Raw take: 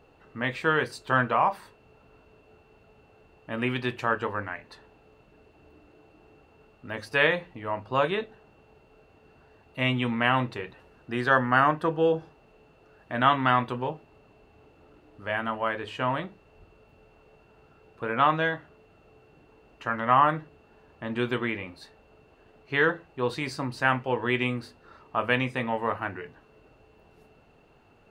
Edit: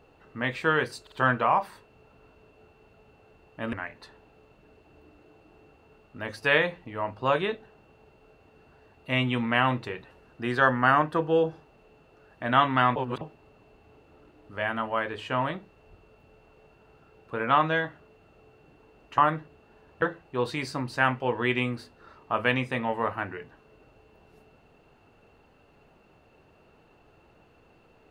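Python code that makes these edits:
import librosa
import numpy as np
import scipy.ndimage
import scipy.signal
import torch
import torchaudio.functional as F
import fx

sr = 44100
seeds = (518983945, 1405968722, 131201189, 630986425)

y = fx.edit(x, sr, fx.stutter(start_s=1.02, slice_s=0.05, count=3),
    fx.cut(start_s=3.63, length_s=0.79),
    fx.reverse_span(start_s=13.65, length_s=0.25),
    fx.cut(start_s=19.87, length_s=0.32),
    fx.cut(start_s=21.03, length_s=1.83), tone=tone)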